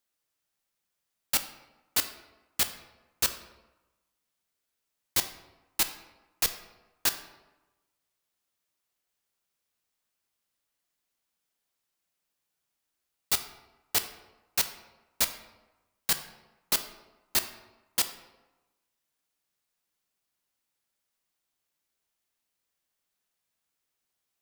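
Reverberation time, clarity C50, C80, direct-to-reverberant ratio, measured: 1.1 s, 10.5 dB, 13.0 dB, 8.0 dB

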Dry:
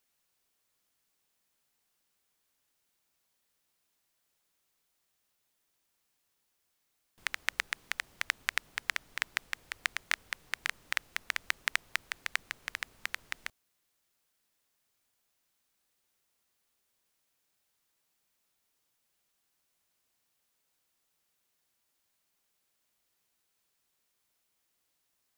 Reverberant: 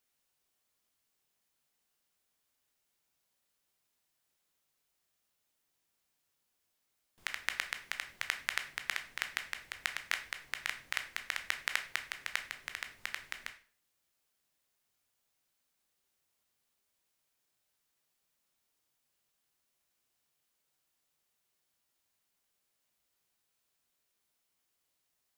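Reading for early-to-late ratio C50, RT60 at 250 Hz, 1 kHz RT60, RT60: 12.0 dB, 0.45 s, 0.45 s, 0.45 s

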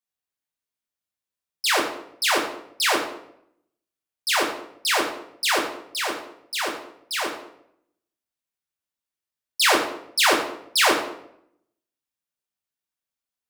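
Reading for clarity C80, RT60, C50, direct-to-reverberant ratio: 9.0 dB, 0.70 s, 6.5 dB, -0.5 dB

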